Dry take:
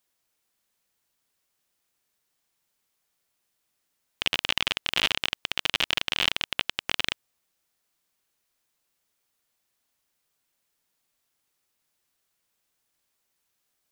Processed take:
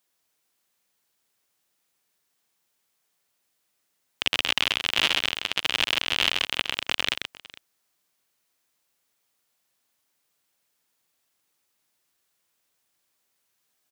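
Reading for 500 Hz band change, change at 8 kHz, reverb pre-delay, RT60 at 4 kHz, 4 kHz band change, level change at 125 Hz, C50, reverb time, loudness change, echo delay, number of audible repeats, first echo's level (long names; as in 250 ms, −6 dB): +2.5 dB, +2.5 dB, no reverb audible, no reverb audible, +2.5 dB, −0.5 dB, no reverb audible, no reverb audible, +2.5 dB, 131 ms, 2, −6.0 dB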